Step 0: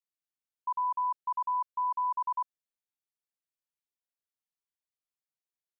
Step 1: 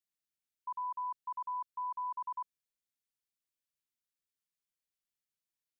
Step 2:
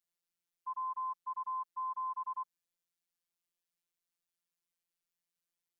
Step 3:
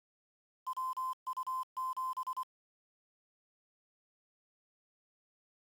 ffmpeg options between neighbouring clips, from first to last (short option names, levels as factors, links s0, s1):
-af "equalizer=f=760:t=o:w=1.4:g=-11.5,volume=1.12"
-af "afftfilt=real='hypot(re,im)*cos(PI*b)':imag='0':win_size=1024:overlap=0.75,volume=1.58"
-af "aeval=exprs='val(0)*gte(abs(val(0)),0.00422)':c=same"